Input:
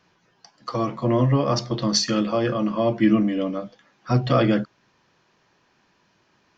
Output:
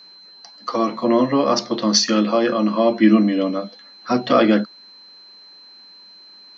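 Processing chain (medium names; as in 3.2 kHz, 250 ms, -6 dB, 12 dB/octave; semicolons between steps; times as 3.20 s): elliptic band-pass 210–6300 Hz, stop band 40 dB; whistle 4.1 kHz -48 dBFS; trim +5.5 dB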